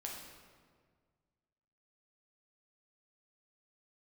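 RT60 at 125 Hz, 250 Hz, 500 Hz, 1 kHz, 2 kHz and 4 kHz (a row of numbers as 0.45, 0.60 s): 2.3, 2.0, 1.9, 1.6, 1.4, 1.1 s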